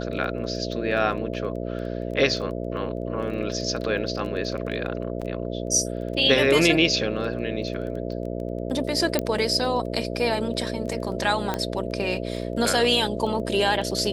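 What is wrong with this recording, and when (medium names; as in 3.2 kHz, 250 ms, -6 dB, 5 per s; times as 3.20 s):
buzz 60 Hz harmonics 11 -30 dBFS
crackle 14 per s -33 dBFS
5.21–5.22 s: dropout 6.4 ms
9.19 s: pop -8 dBFS
11.54 s: pop -11 dBFS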